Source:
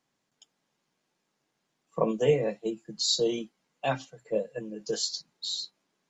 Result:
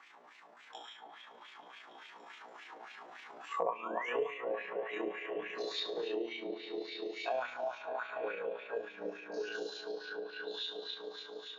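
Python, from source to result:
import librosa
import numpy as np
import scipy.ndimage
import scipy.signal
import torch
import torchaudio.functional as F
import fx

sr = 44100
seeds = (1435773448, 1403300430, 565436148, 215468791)

y = fx.spec_trails(x, sr, decay_s=0.32)
y = fx.doppler_pass(y, sr, speed_mps=21, closest_m=20.0, pass_at_s=1.92)
y = scipy.signal.sosfilt(scipy.signal.butter(2, 260.0, 'highpass', fs=sr, output='sos'), y)
y = fx.peak_eq(y, sr, hz=560.0, db=-7.0, octaves=0.32)
y = fx.spec_paint(y, sr, seeds[0], shape='rise', start_s=1.93, length_s=0.32, low_hz=860.0, high_hz=3500.0, level_db=-42.0)
y = fx.high_shelf(y, sr, hz=5900.0, db=-9.0)
y = fx.notch(y, sr, hz=4700.0, q=24.0)
y = fx.echo_stepped(y, sr, ms=152, hz=790.0, octaves=0.7, feedback_pct=70, wet_db=-5.5)
y = fx.rev_spring(y, sr, rt60_s=2.3, pass_ms=(39,), chirp_ms=35, drr_db=10.0)
y = fx.stretch_grains(y, sr, factor=1.9, grain_ms=71.0)
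y = fx.wah_lfo(y, sr, hz=3.5, low_hz=570.0, high_hz=2500.0, q=2.4)
y = fx.band_squash(y, sr, depth_pct=100)
y = F.gain(torch.from_numpy(y), 7.5).numpy()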